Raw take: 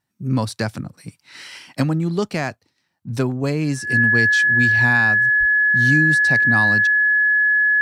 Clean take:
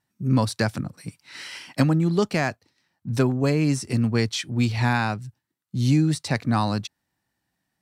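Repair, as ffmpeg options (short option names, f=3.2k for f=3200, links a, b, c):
-filter_complex "[0:a]bandreject=f=1.7k:w=30,asplit=3[a][b][c];[a]afade=t=out:st=5.39:d=0.02[d];[b]highpass=f=140:w=0.5412,highpass=f=140:w=1.3066,afade=t=in:st=5.39:d=0.02,afade=t=out:st=5.51:d=0.02[e];[c]afade=t=in:st=5.51:d=0.02[f];[d][e][f]amix=inputs=3:normalize=0"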